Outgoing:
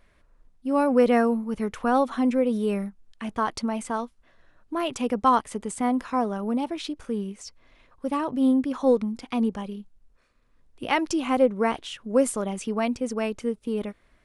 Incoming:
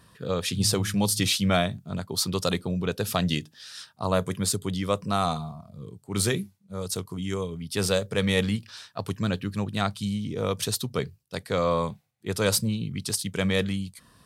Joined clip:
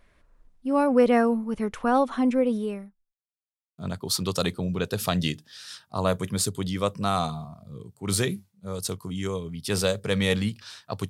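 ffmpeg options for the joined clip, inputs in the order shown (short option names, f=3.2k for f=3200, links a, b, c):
-filter_complex "[0:a]apad=whole_dur=11.09,atrim=end=11.09,asplit=2[a][b];[a]atrim=end=3.19,asetpts=PTS-STARTPTS,afade=t=out:st=2.51:d=0.68:c=qua[c];[b]atrim=start=3.19:end=3.78,asetpts=PTS-STARTPTS,volume=0[d];[1:a]atrim=start=1.85:end=9.16,asetpts=PTS-STARTPTS,afade=t=in:d=0.004:c=hsin[e];[c][d][e]concat=n=3:v=0:a=1"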